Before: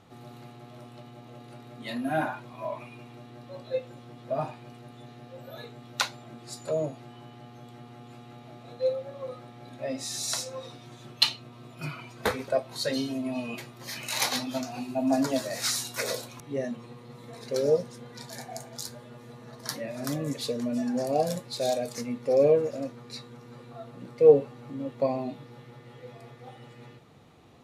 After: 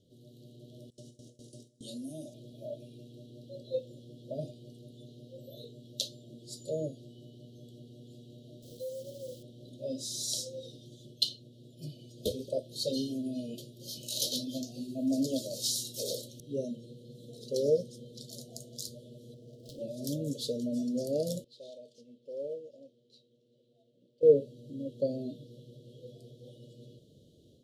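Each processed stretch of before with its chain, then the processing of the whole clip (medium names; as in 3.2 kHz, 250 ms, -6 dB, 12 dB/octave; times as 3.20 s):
0.90–2.34 s: high-order bell 7.2 kHz +14 dB 1.2 oct + compression 2:1, threshold -38 dBFS + gate with hold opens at -35 dBFS, closes at -40 dBFS
8.62–9.43 s: peaking EQ 2.3 kHz -11.5 dB 1.1 oct + compression 4:1, threshold -34 dBFS + word length cut 8-bit, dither none
19.34–19.82 s: median filter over 15 samples + peaking EQ 190 Hz -8.5 dB 0.47 oct + loudspeaker Doppler distortion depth 0.33 ms
21.44–24.23 s: CVSD coder 64 kbps + band-pass filter 1.7 kHz, Q 2.1 + tilt EQ -2 dB/octave
whole clip: Chebyshev band-stop 600–3100 Hz, order 5; level rider gain up to 6 dB; trim -8.5 dB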